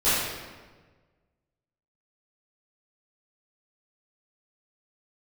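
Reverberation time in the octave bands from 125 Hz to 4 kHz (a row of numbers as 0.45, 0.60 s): 1.9, 1.6, 1.5, 1.3, 1.2, 1.0 s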